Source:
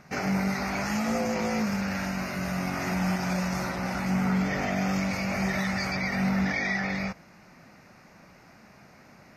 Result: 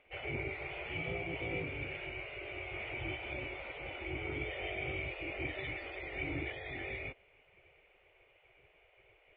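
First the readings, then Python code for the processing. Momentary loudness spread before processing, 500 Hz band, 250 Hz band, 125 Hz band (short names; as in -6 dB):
5 LU, -8.5 dB, -19.5 dB, -14.0 dB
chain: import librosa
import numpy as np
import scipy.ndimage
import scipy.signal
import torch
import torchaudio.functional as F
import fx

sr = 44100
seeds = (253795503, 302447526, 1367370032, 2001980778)

y = fx.formant_cascade(x, sr, vowel='i')
y = fx.spec_gate(y, sr, threshold_db=-20, keep='weak')
y = y * librosa.db_to_amplitude(13.0)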